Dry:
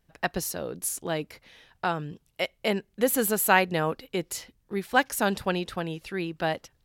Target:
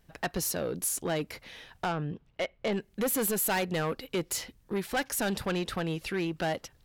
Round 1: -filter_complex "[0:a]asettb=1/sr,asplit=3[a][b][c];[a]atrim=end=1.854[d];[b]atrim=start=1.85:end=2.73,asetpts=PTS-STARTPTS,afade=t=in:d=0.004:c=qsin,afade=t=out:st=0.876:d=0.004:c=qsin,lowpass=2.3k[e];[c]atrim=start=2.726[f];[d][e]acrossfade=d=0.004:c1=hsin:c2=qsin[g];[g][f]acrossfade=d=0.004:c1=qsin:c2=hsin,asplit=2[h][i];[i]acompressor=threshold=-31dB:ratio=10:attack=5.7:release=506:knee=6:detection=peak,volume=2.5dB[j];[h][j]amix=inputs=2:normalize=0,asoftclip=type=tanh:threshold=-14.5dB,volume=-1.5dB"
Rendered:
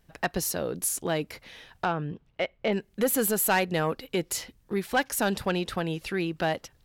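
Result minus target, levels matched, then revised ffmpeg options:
soft clip: distortion -7 dB
-filter_complex "[0:a]asettb=1/sr,asplit=3[a][b][c];[a]atrim=end=1.854[d];[b]atrim=start=1.85:end=2.73,asetpts=PTS-STARTPTS,afade=t=in:d=0.004:c=qsin,afade=t=out:st=0.876:d=0.004:c=qsin,lowpass=2.3k[e];[c]atrim=start=2.726[f];[d][e]acrossfade=d=0.004:c1=hsin:c2=qsin[g];[g][f]acrossfade=d=0.004:c1=qsin:c2=hsin,asplit=2[h][i];[i]acompressor=threshold=-31dB:ratio=10:attack=5.7:release=506:knee=6:detection=peak,volume=2.5dB[j];[h][j]amix=inputs=2:normalize=0,asoftclip=type=tanh:threshold=-23dB,volume=-1.5dB"

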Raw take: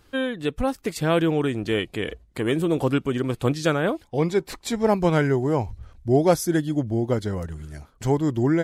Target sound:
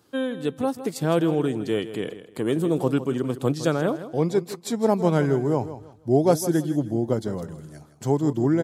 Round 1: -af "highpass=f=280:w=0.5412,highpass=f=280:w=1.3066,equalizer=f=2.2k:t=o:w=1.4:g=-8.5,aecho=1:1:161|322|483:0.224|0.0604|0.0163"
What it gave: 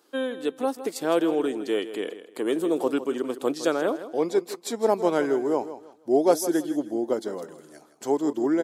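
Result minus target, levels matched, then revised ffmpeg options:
125 Hz band -18.5 dB
-af "highpass=f=120:w=0.5412,highpass=f=120:w=1.3066,equalizer=f=2.2k:t=o:w=1.4:g=-8.5,aecho=1:1:161|322|483:0.224|0.0604|0.0163"

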